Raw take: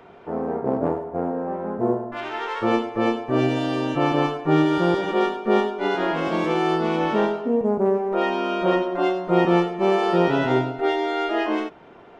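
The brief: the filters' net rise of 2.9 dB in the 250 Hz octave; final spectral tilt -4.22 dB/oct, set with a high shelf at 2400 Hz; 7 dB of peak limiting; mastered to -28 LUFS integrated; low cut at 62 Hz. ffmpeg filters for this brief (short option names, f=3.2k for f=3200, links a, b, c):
-af "highpass=62,equalizer=f=250:t=o:g=4,highshelf=f=2.4k:g=9,volume=-6.5dB,alimiter=limit=-17dB:level=0:latency=1"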